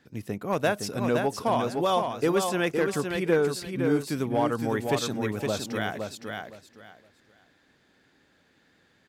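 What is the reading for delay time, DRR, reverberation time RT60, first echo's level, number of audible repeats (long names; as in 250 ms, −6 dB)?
514 ms, no reverb audible, no reverb audible, −5.0 dB, 3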